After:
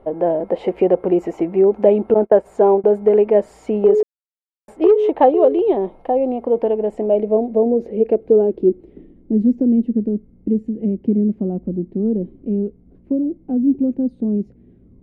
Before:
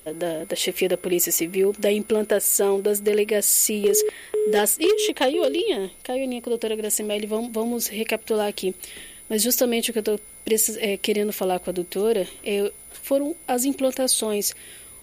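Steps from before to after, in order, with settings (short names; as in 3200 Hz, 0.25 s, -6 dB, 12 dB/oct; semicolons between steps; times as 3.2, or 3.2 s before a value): 2.14–2.84 gate -22 dBFS, range -28 dB; low-pass sweep 820 Hz -> 230 Hz, 6.62–9.67; 4.03–4.68 mute; gain +5 dB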